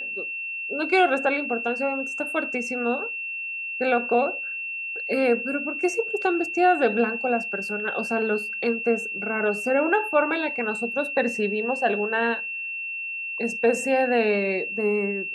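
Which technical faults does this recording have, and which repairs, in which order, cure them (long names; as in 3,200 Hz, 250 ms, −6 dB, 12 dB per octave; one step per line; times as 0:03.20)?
whistle 2,700 Hz −29 dBFS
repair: notch filter 2,700 Hz, Q 30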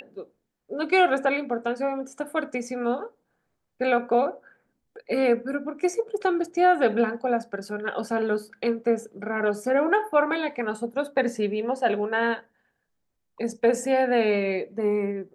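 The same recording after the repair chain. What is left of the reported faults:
none of them is left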